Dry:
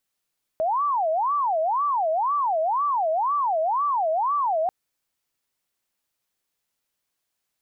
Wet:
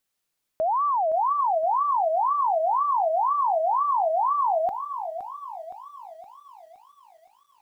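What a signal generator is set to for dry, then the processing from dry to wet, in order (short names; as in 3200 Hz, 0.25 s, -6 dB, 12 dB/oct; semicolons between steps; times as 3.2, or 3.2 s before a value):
siren wail 629–1170 Hz 2/s sine -20 dBFS 4.09 s
lo-fi delay 0.517 s, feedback 55%, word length 10-bit, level -9.5 dB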